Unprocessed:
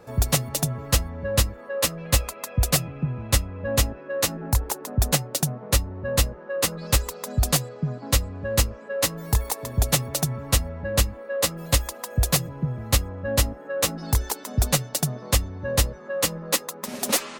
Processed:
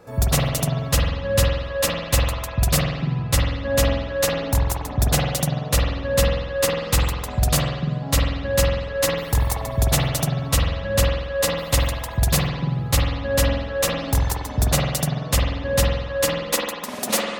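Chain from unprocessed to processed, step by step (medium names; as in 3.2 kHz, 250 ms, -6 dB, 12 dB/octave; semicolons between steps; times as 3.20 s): spring tank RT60 1.1 s, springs 47 ms, chirp 30 ms, DRR -1.5 dB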